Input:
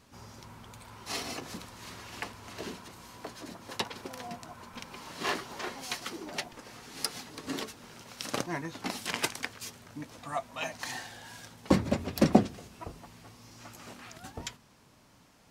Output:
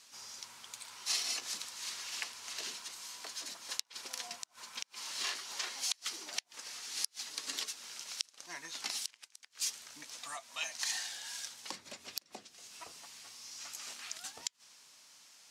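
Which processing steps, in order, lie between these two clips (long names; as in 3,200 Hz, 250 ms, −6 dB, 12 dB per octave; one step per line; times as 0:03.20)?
downward compressor 5 to 1, threshold −36 dBFS, peak gain reduction 19.5 dB
resonant band-pass 6,300 Hz, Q 0.9
gate with flip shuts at −28 dBFS, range −28 dB
level +10 dB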